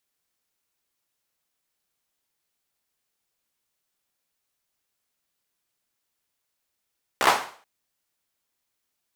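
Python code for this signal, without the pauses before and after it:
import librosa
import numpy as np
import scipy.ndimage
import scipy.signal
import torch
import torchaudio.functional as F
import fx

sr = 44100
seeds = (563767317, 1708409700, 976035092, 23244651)

y = fx.drum_clap(sr, seeds[0], length_s=0.43, bursts=5, spacing_ms=15, hz=900.0, decay_s=0.46)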